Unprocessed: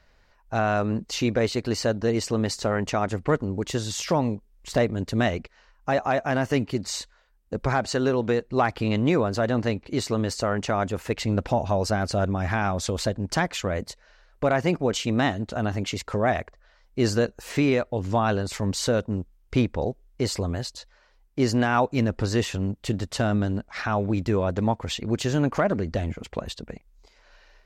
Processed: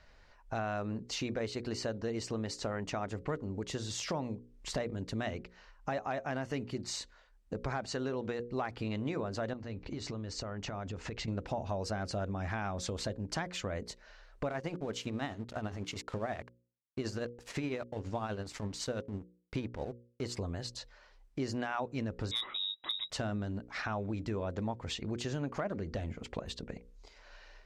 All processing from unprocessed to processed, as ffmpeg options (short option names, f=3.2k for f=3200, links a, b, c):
-filter_complex "[0:a]asettb=1/sr,asplit=3[a][b][c];[a]atrim=end=9.534[d];[b]atrim=start=9.53:end=11.28,asetpts=PTS-STARTPTS,afade=t=in:d=0.004:c=qsin,afade=t=out:st=1.746:d=0.004:c=qsin,lowpass=f=7.3k:w=0.5412,lowpass=f=7.3k:w=1.3066,lowshelf=f=130:g=8.5,acompressor=threshold=-30dB:ratio=6:attack=3.2:release=140:knee=1:detection=peak[e];[c]atrim=start=11.276[f];[d][e]acrossfade=d=0.004:c1=hsin:c2=qsin[g];[g][f]acrossfade=d=0.004:c1=qsin:c2=hsin,asettb=1/sr,asplit=3[h][i][j];[h]atrim=end=14.494[k];[i]atrim=start=14.49:end=20.37,asetpts=PTS-STARTPTS,afade=t=in:d=0.004:c=qsin,afade=t=out:st=5.876:d=0.004:c=qsin,tremolo=f=12:d=0.54,aeval=exprs='sgn(val(0))*max(abs(val(0))-0.00596,0)':c=same[l];[j]atrim=start=20.366[m];[k][l]acrossfade=d=0.004:c1=hsin:c2=qsin[n];[n][m]acrossfade=d=0.004:c1=qsin:c2=hsin,asettb=1/sr,asplit=3[o][p][q];[o]atrim=end=22.314[r];[p]atrim=start=22.31:end=23.1,asetpts=PTS-STARTPTS,afade=t=in:d=0.004:c=qsin,afade=t=out:st=0.786:d=0.004:c=qsin,lowpass=f=3.3k:t=q:w=0.5098,lowpass=f=3.3k:t=q:w=0.6013,lowpass=f=3.3k:t=q:w=0.9,lowpass=f=3.3k:t=q:w=2.563,afreqshift=-3900,aeval=exprs='0.211*(abs(mod(val(0)/0.211+3,4)-2)-1)':c=same[s];[q]atrim=start=23.096[t];[r][s]acrossfade=d=0.004:c1=hsin:c2=qsin[u];[u][t]acrossfade=d=0.004:c1=qsin:c2=hsin,lowpass=8.5k,bandreject=f=60:t=h:w=6,bandreject=f=120:t=h:w=6,bandreject=f=180:t=h:w=6,bandreject=f=240:t=h:w=6,bandreject=f=300:t=h:w=6,bandreject=f=360:t=h:w=6,bandreject=f=420:t=h:w=6,bandreject=f=480:t=h:w=6,bandreject=f=540:t=h:w=6,acompressor=threshold=-39dB:ratio=2.5"